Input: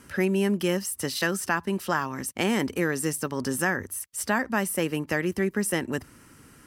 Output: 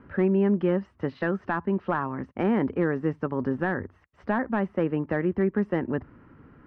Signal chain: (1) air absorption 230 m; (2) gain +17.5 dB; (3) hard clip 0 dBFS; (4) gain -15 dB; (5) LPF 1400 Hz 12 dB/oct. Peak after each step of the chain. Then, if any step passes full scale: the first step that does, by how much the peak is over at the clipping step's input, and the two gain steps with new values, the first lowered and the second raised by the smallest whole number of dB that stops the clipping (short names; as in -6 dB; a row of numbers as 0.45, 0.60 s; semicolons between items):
-11.5, +6.0, 0.0, -15.0, -14.5 dBFS; step 2, 6.0 dB; step 2 +11.5 dB, step 4 -9 dB